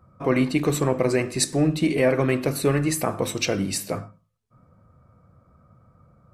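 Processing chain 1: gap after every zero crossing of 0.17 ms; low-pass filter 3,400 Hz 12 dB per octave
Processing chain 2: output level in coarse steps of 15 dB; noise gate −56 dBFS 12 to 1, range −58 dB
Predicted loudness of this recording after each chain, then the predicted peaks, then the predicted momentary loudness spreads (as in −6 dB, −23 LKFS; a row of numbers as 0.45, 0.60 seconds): −24.0, −31.5 LKFS; −8.0, −16.0 dBFS; 8, 2 LU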